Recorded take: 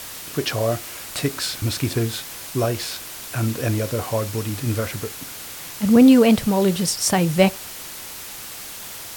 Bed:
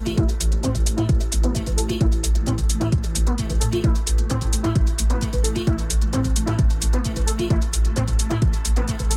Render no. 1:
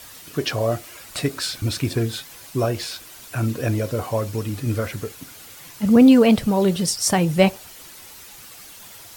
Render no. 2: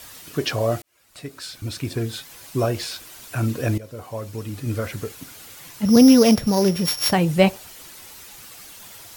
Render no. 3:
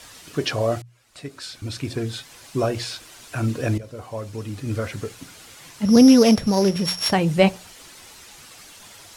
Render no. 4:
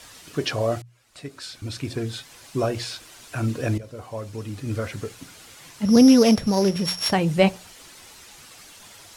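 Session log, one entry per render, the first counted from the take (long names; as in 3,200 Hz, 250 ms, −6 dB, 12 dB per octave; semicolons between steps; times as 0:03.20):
broadband denoise 9 dB, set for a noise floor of −36 dBFS
0:00.82–0:02.57: fade in; 0:03.78–0:05.10: fade in, from −16 dB; 0:05.85–0:07.13: samples sorted by size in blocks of 8 samples
low-pass filter 9,300 Hz 12 dB per octave; mains-hum notches 60/120/180 Hz
level −1.5 dB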